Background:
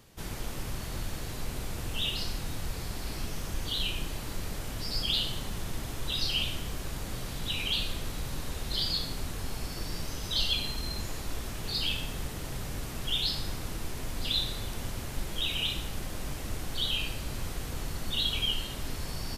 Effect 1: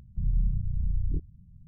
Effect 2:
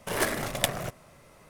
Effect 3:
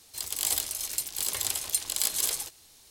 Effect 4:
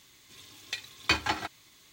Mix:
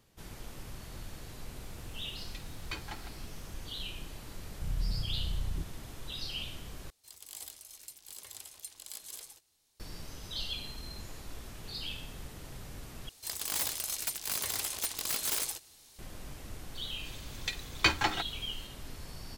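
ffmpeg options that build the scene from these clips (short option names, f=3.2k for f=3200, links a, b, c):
-filter_complex "[4:a]asplit=2[a][b];[3:a]asplit=2[c][d];[0:a]volume=-9dB[e];[d]aeval=exprs='(mod(12.6*val(0)+1,2)-1)/12.6':c=same[f];[e]asplit=3[g][h][i];[g]atrim=end=6.904[j];[c]atrim=end=2.9,asetpts=PTS-STARTPTS,volume=-17.5dB[k];[h]atrim=start=9.796:end=13.094[l];[f]atrim=end=2.9,asetpts=PTS-STARTPTS,volume=-2dB[m];[i]atrim=start=15.986[n];[a]atrim=end=1.92,asetpts=PTS-STARTPTS,volume=-15.5dB,afade=t=in:d=0.004:c=hsin,afade=t=out:st=1.916:d=0.004:c=hsin,adelay=1620[o];[1:a]atrim=end=1.67,asetpts=PTS-STARTPTS,volume=-7dB,afade=t=in:d=0.004:c=hsin,afade=t=out:st=1.666:d=0.004:c=hsin,adelay=4440[p];[b]atrim=end=1.92,asetpts=PTS-STARTPTS,afade=t=in:d=0.004:c=hsin,afade=t=out:st=1.916:d=0.004:c=hsin,adelay=16750[q];[j][k]acrossfade=d=0.004:c1=hsin:c2=hsin[r];[r][l]acrossfade=d=0.004:c1=hsin:c2=hsin[s];[s][m]acrossfade=d=0.004:c1=hsin:c2=hsin[t];[t][n]acrossfade=d=0.004:c1=hsin:c2=hsin[u];[u][o][p][q]amix=inputs=4:normalize=0"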